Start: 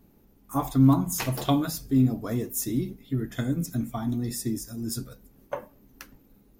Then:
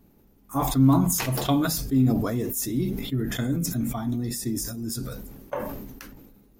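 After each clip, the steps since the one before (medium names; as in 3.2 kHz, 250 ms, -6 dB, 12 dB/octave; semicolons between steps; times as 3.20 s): decay stretcher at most 37 dB/s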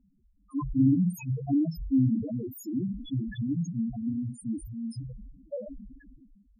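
loudest bins only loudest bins 2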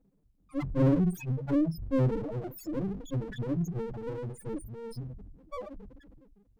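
comb filter that takes the minimum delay 6.3 ms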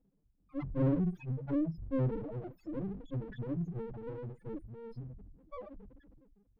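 distance through air 310 m; trim -5 dB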